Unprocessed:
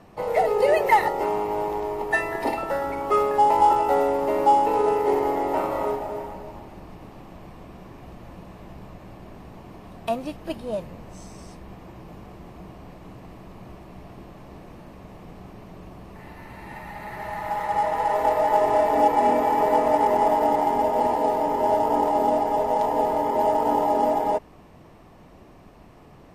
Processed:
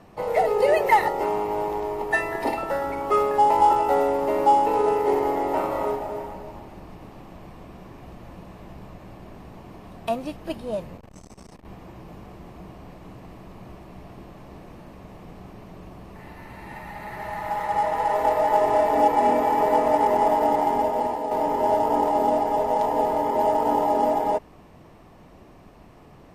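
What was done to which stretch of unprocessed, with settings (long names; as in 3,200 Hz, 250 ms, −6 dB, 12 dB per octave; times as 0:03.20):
0:10.97–0:11.65: saturating transformer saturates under 250 Hz
0:20.76–0:21.31: fade out, to −7.5 dB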